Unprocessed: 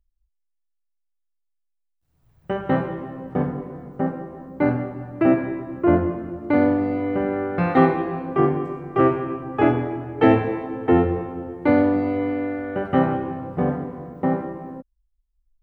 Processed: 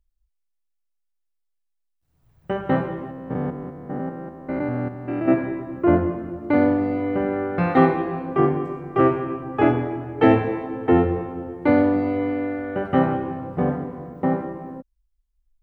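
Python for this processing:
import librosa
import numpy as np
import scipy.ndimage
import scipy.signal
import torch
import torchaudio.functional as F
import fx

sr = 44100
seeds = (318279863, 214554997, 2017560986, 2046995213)

y = fx.spec_steps(x, sr, hold_ms=200, at=(3.11, 5.31))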